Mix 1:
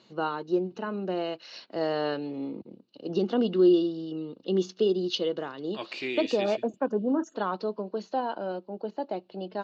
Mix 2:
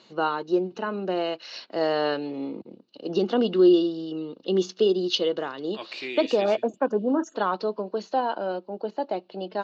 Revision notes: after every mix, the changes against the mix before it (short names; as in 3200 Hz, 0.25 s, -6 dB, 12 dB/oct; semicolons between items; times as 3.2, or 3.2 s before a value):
first voice +5.5 dB; master: add low shelf 210 Hz -9.5 dB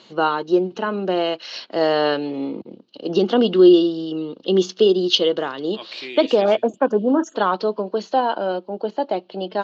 first voice +6.0 dB; master: remove notch 3200 Hz, Q 10